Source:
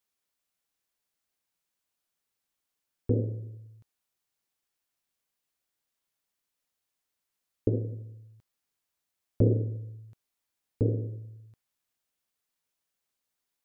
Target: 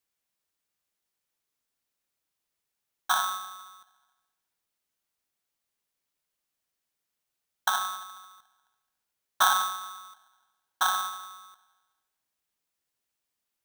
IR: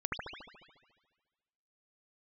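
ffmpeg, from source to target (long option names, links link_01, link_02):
-filter_complex "[0:a]afreqshift=-14,asplit=2[link_01][link_02];[1:a]atrim=start_sample=2205,adelay=63[link_03];[link_02][link_03]afir=irnorm=-1:irlink=0,volume=-23dB[link_04];[link_01][link_04]amix=inputs=2:normalize=0,aeval=exprs='val(0)*sgn(sin(2*PI*1200*n/s))':channel_layout=same"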